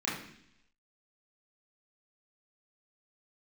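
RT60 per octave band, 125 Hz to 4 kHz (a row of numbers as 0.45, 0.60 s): 0.85, 0.85, 0.75, 0.65, 0.85, 0.95 s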